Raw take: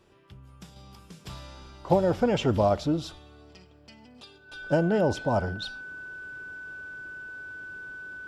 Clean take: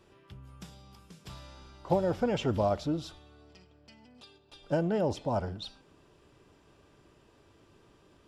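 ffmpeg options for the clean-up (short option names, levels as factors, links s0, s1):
-af "bandreject=f=1500:w=30,asetnsamples=n=441:p=0,asendcmd='0.76 volume volume -5dB',volume=1"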